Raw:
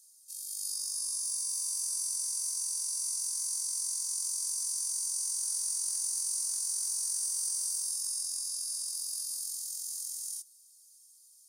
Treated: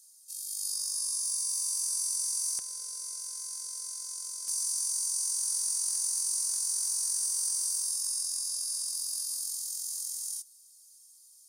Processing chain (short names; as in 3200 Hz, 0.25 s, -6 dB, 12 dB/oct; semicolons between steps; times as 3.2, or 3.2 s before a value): high shelf 3100 Hz -2.5 dB, from 2.59 s -11 dB, from 4.48 s -2.5 dB; gain +4.5 dB